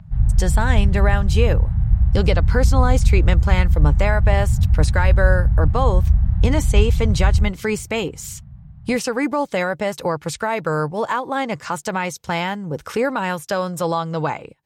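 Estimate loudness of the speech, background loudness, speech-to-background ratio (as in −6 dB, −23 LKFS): −23.5 LKFS, −18.5 LKFS, −5.0 dB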